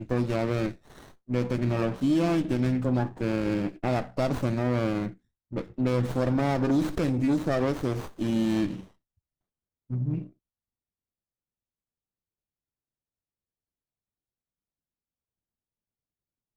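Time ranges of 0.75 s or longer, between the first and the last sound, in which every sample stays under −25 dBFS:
0:08.71–0:09.92

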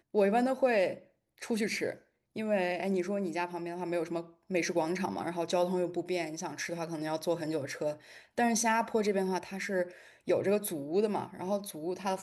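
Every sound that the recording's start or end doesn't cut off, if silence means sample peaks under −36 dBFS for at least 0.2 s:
0:01.42–0:01.92
0:02.36–0:04.21
0:04.51–0:07.93
0:08.38–0:09.84

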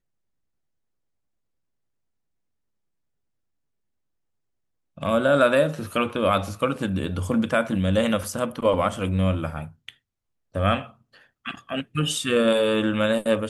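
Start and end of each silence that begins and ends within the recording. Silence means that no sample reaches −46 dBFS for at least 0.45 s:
0:09.91–0:10.54

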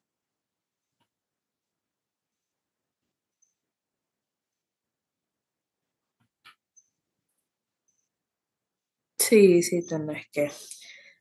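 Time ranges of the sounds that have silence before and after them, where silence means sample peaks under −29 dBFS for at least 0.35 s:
0:09.20–0:10.72

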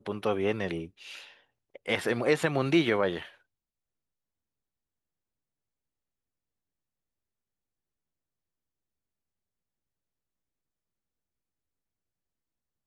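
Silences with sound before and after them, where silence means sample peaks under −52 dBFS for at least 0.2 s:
0:01.41–0:01.75

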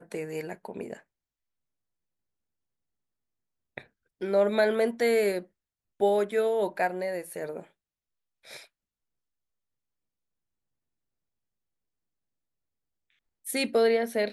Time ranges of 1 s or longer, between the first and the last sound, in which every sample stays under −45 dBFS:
0:01.00–0:03.77
0:08.64–0:13.45

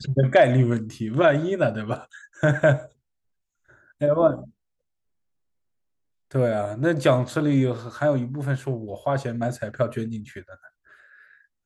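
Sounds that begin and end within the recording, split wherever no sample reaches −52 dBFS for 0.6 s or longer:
0:03.69–0:04.50

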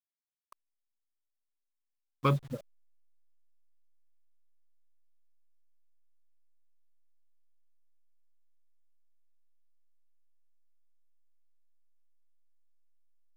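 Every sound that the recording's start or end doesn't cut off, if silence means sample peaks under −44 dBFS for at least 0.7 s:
0:02.24–0:02.60

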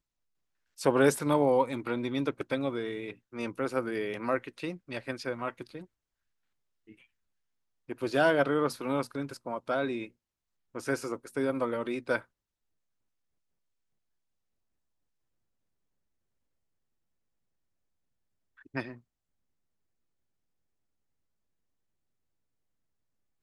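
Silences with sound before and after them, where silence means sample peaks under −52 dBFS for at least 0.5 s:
0:05.85–0:06.88
0:07.04–0:07.89
0:10.09–0:10.75
0:12.25–0:18.58

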